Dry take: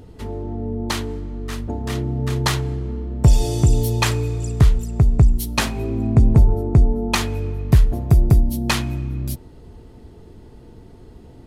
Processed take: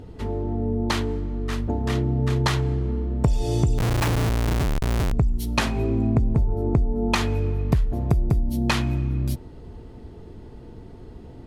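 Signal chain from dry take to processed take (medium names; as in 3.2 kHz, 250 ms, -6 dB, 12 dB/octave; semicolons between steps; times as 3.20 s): low-pass 4 kHz 6 dB/octave; compression 10:1, threshold -18 dBFS, peak gain reduction 11.5 dB; 3.78–5.13 s: Schmitt trigger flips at -25 dBFS; trim +1.5 dB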